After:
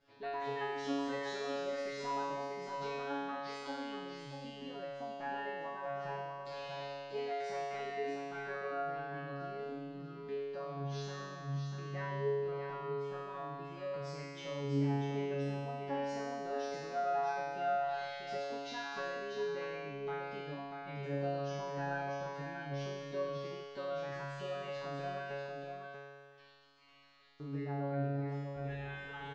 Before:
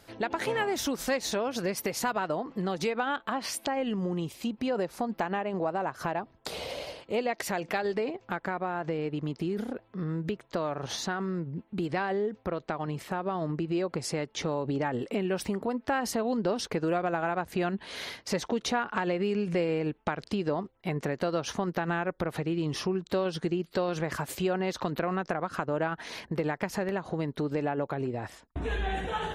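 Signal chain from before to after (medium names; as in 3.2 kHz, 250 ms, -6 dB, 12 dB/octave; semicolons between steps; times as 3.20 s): 25.31–27.40 s: spectral gate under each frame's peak -30 dB weak; Bessel low-pass 3.9 kHz, order 8; feedback comb 140 Hz, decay 1.9 s, mix 100%; delay 641 ms -6 dB; trim +10.5 dB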